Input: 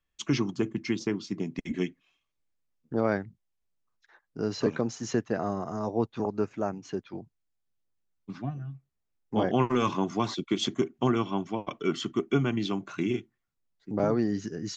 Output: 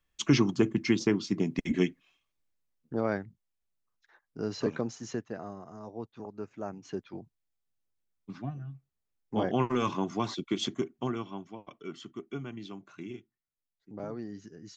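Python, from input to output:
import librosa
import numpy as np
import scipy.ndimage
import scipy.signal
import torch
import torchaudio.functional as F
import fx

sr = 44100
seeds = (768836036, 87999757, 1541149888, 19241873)

y = fx.gain(x, sr, db=fx.line((1.79, 3.5), (3.02, -3.5), (4.81, -3.5), (5.61, -12.5), (6.31, -12.5), (6.94, -3.0), (10.64, -3.0), (11.61, -13.0)))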